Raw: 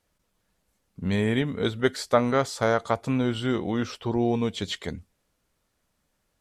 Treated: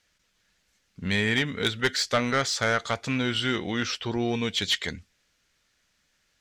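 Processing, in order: band shelf 3200 Hz +12 dB 2.6 oct; soft clip -12.5 dBFS, distortion -13 dB; gain -2.5 dB

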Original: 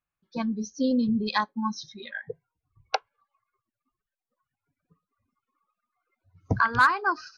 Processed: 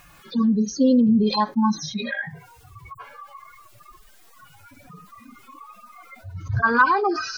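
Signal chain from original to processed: median-filter separation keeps harmonic; 2.09–2.95 low shelf 350 Hz -9.5 dB; fast leveller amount 50%; gain +4.5 dB

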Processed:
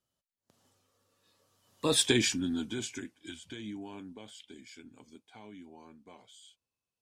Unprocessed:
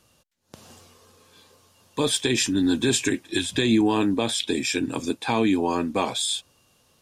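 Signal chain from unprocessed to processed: Doppler pass-by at 2.05, 25 m/s, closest 3.5 m; gain -1 dB

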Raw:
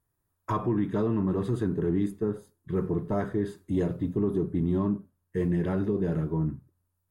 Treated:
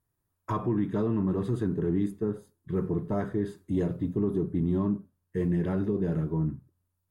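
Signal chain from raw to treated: bell 170 Hz +2.5 dB 2.2 oct; gain -2.5 dB

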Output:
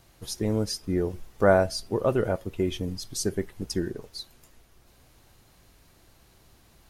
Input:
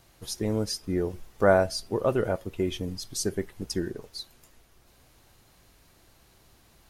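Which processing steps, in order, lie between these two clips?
low shelf 320 Hz +2.5 dB

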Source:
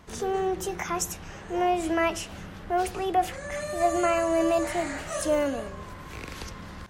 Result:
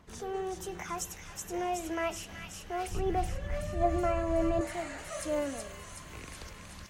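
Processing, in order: phaser 1.3 Hz, delay 2.4 ms, feedback 28%; 2.91–4.61 RIAA curve playback; thin delay 0.374 s, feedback 69%, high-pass 2400 Hz, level -3 dB; gain -8.5 dB

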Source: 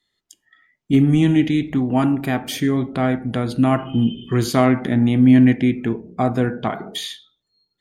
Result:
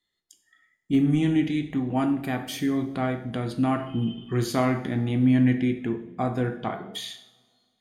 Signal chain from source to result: two-slope reverb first 0.56 s, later 2.2 s, from -21 dB, DRR 6 dB; gain -7.5 dB

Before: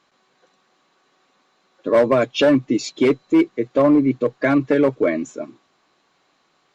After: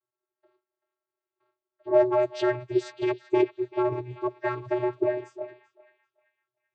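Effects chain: gate with hold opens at -51 dBFS; low-pass opened by the level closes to 2500 Hz, open at -15.5 dBFS; formant-preserving pitch shift +9.5 st; vocoder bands 16, square 123 Hz; on a send: narrowing echo 0.386 s, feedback 40%, band-pass 2100 Hz, level -14 dB; on the sum: gain -7 dB

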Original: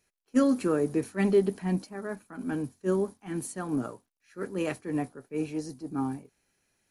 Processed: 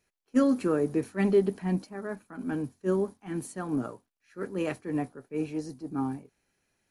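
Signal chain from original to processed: high shelf 4500 Hz -5.5 dB

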